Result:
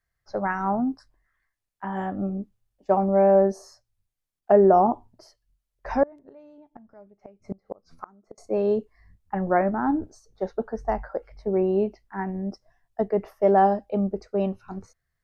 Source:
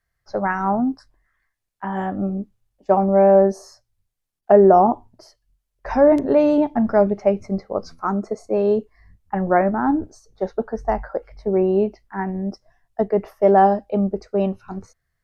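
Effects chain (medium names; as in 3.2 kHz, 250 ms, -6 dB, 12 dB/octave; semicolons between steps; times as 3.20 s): 6.03–8.38 s: inverted gate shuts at -15 dBFS, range -29 dB; trim -4.5 dB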